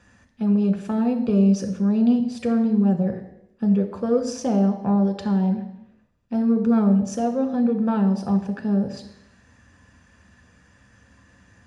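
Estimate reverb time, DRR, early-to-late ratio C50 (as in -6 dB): 0.85 s, 3.5 dB, 10.0 dB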